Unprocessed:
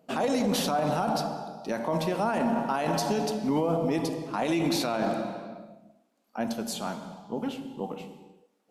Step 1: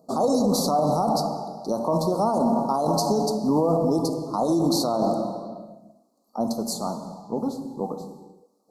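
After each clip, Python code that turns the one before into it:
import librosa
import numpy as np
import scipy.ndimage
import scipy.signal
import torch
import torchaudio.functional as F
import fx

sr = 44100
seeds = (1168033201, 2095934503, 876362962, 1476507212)

y = scipy.signal.sosfilt(scipy.signal.cheby1(4, 1.0, [1200.0, 4200.0], 'bandstop', fs=sr, output='sos'), x)
y = y * librosa.db_to_amplitude(5.5)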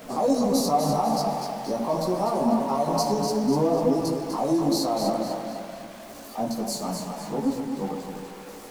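y = x + 0.5 * 10.0 ** (-34.0 / 20.0) * np.sign(x)
y = fx.chorus_voices(y, sr, voices=6, hz=0.57, base_ms=18, depth_ms=4.1, mix_pct=50)
y = fx.echo_thinned(y, sr, ms=248, feedback_pct=44, hz=420.0, wet_db=-6.0)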